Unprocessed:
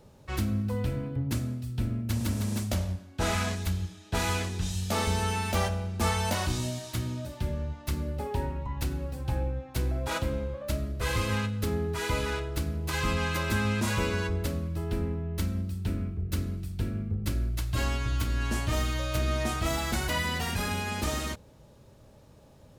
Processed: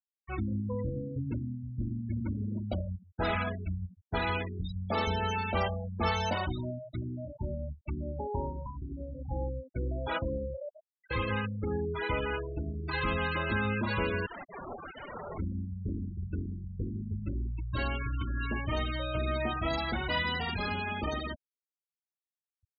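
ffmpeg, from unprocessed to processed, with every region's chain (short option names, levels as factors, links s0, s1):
-filter_complex "[0:a]asettb=1/sr,asplit=3[s0][s1][s2];[s0]atrim=end=8.664[s3];[s1]atrim=start=8.66:end=9.31,asetpts=PTS-STARTPTS,afade=t=in:d=0.004:c=qsin,afade=t=out:st=0.646:d=0.004:c=qsin,acompressor=threshold=0.0316:ratio=12:attack=3.2:release=140:knee=1:detection=peak,asplit=2[s4][s5];[s5]adelay=39,volume=0.447[s6];[s4][s6]amix=inputs=2:normalize=0,atrim=end_sample=28665[s7];[s2]atrim=start=9.306[s8];[s3][s7]acrossfade=d=0.004:c1=hsin:c2=qsin[s9];[s9][s8]acrossfade=d=0.004:c1=qsin:c2=hsin,asettb=1/sr,asplit=3[s10][s11][s12];[s10]atrim=end=10.694[s13];[s11]atrim=start=10.69:end=11.11,asetpts=PTS-STARTPTS,afade=t=in:d=0.004:c=qsin,afade=t=out:st=0.416:d=0.004:c=qsin,highpass=930,acompressor=threshold=0.00794:ratio=6:attack=3.2:release=140:knee=1:detection=peak[s14];[s12]atrim=start=11.106[s15];[s13][s14]acrossfade=d=0.004:c1=hsin:c2=qsin[s16];[s16][s15]acrossfade=d=0.004:c1=qsin:c2=hsin,asettb=1/sr,asplit=3[s17][s18][s19];[s17]atrim=end=14.264[s20];[s18]atrim=start=14.26:end=15.38,asetpts=PTS-STARTPTS,afade=t=in:d=0.004:c=qsin,afade=t=out:st=1.116:d=0.004:c=qsin,highpass=130,acontrast=28,aeval=exprs='(mod(37.6*val(0)+1,2)-1)/37.6':c=same[s21];[s19]atrim=start=15.376[s22];[s20][s21]acrossfade=d=0.004:c1=hsin:c2=qsin[s23];[s23][s22]acrossfade=d=0.004:c1=qsin:c2=hsin,lowpass=5100,afftfilt=real='re*gte(hypot(re,im),0.0355)':imag='im*gte(hypot(re,im),0.0355)':win_size=1024:overlap=0.75,bass=f=250:g=-5,treble=f=4000:g=7"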